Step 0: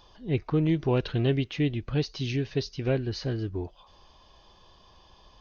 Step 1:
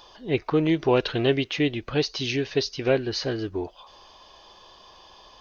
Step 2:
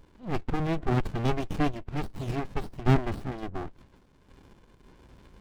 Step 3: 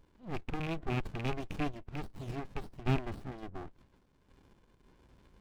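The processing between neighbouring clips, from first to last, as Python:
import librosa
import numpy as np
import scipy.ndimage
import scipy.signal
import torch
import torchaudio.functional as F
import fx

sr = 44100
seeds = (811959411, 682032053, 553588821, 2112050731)

y1 = fx.bass_treble(x, sr, bass_db=-13, treble_db=1)
y1 = y1 * 10.0 ** (8.0 / 20.0)
y2 = fx.spec_topn(y1, sr, count=32)
y2 = fx.tremolo_random(y2, sr, seeds[0], hz=3.5, depth_pct=55)
y2 = fx.running_max(y2, sr, window=65)
y2 = y2 * 10.0 ** (4.5 / 20.0)
y3 = fx.rattle_buzz(y2, sr, strikes_db=-27.0, level_db=-21.0)
y3 = y3 * 10.0 ** (-8.5 / 20.0)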